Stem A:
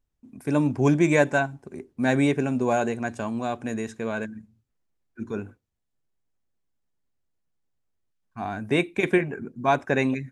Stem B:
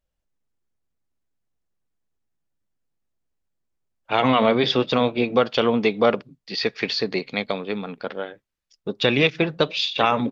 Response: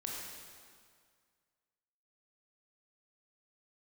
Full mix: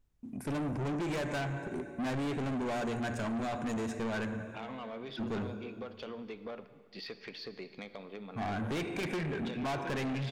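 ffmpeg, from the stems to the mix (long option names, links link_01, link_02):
-filter_complex "[0:a]bass=frequency=250:gain=3,treble=frequency=4000:gain=-2,acompressor=threshold=-23dB:ratio=6,volume=0.5dB,asplit=2[link_01][link_02];[link_02]volume=-7.5dB[link_03];[1:a]acontrast=69,highshelf=frequency=5400:gain=-10,acompressor=threshold=-23dB:ratio=4,adelay=450,volume=-19.5dB,asplit=2[link_04][link_05];[link_05]volume=-10dB[link_06];[2:a]atrim=start_sample=2205[link_07];[link_03][link_06]amix=inputs=2:normalize=0[link_08];[link_08][link_07]afir=irnorm=-1:irlink=0[link_09];[link_01][link_04][link_09]amix=inputs=3:normalize=0,asoftclip=type=tanh:threshold=-32dB"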